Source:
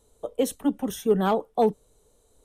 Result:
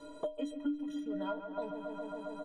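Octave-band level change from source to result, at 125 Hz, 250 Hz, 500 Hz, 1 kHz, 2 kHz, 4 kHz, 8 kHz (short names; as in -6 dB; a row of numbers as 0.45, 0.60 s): -20.5 dB, -9.5 dB, -14.5 dB, -15.5 dB, -10.0 dB, -13.0 dB, under -20 dB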